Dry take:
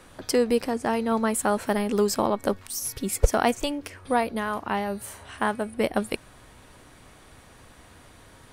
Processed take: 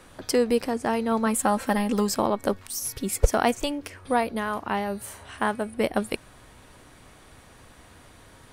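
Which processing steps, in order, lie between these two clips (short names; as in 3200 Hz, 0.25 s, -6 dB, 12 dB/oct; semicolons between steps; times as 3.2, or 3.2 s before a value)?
1.26–2.09 comb 3.8 ms, depth 57%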